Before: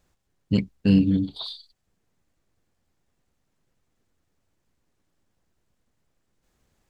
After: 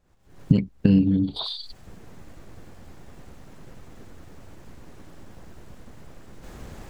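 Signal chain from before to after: recorder AGC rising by 74 dB/s; treble shelf 2.2 kHz -9.5 dB

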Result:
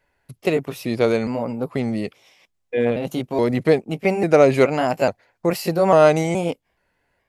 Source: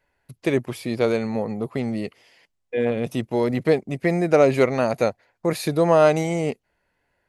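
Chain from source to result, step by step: pitch shift switched off and on +2 st, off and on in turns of 423 ms; trim +2.5 dB

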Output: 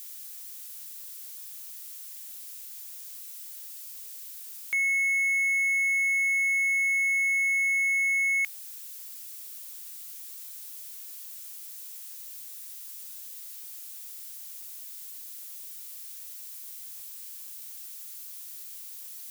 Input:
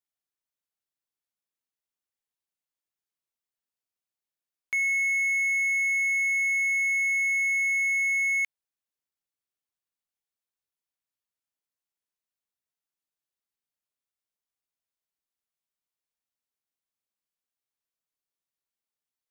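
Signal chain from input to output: zero-crossing glitches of -36.5 dBFS

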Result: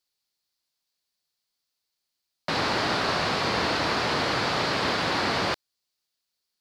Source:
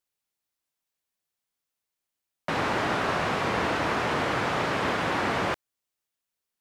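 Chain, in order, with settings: peaking EQ 4.5 kHz +13.5 dB 0.65 oct

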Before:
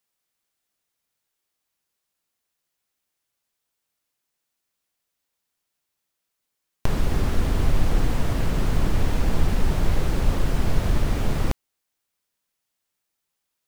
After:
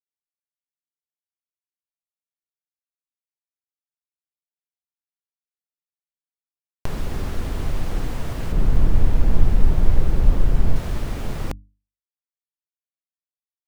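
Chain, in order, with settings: 8.52–10.76 s: tilt EQ -2 dB/octave; bit crusher 8-bit; hum notches 50/100/150/200/250/300 Hz; trim -3.5 dB

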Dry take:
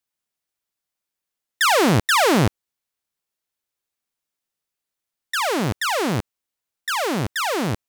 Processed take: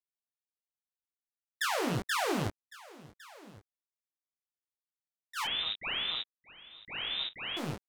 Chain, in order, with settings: rattle on loud lows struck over -22 dBFS, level -22 dBFS; gate -21 dBFS, range -19 dB; compression, threshold -27 dBFS, peak gain reduction 12 dB; delay 1106 ms -20 dB; 5.44–7.57 s: frequency inversion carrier 3.8 kHz; detune thickener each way 15 cents

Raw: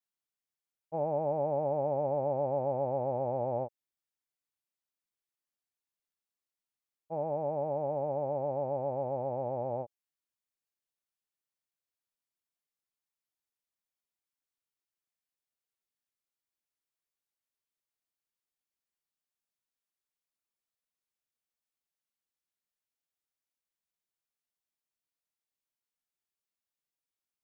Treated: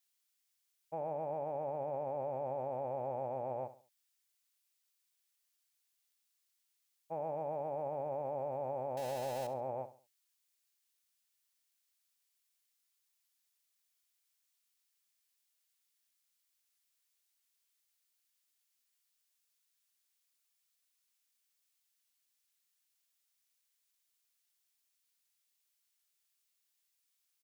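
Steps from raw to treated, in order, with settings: 8.97–9.47 s: jump at every zero crossing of -45.5 dBFS; peak limiter -28.5 dBFS, peak gain reduction 6.5 dB; tilt shelf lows -9.5 dB, about 1.3 kHz; on a send: feedback delay 69 ms, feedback 33%, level -14 dB; on the sum: trim +3.5 dB

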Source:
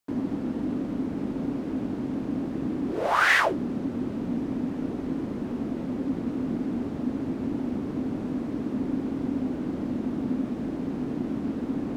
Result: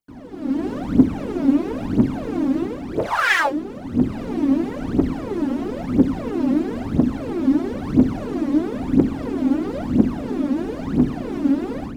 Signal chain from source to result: level rider gain up to 15.5 dB; phaser 1 Hz, delay 3.8 ms, feedback 80%; trim -9.5 dB

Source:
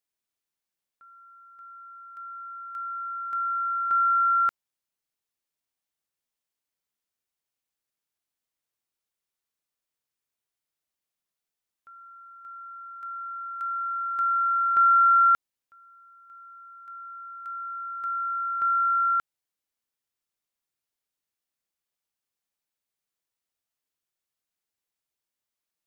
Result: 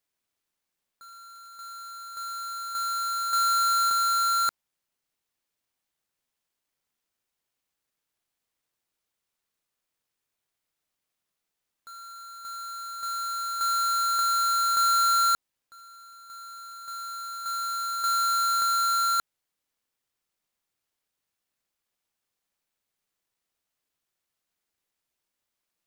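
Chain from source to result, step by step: square wave that keeps the level; in parallel at +1.5 dB: compressor with a negative ratio -24 dBFS, ratio -0.5; on the sum: trim -7.5 dB

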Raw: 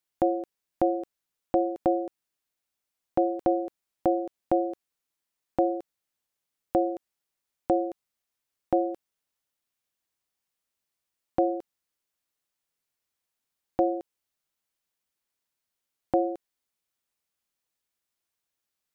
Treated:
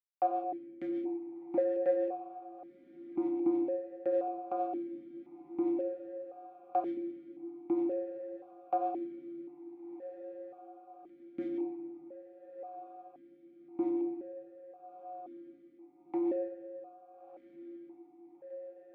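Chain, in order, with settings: companding laws mixed up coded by A; dynamic bell 370 Hz, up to +6 dB, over -38 dBFS, Q 2.3; in parallel at +2 dB: peak limiter -21.5 dBFS, peak gain reduction 12 dB; on the sum: harmonic tremolo 6.6 Hz, depth 70%, crossover 440 Hz; saturation -15 dBFS, distortion -18 dB; on a send: echo that smears into a reverb 1362 ms, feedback 67%, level -13 dB; on the sum: simulated room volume 1100 m³, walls mixed, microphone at 1.2 m; stepped vowel filter 1.9 Hz; trim +1 dB

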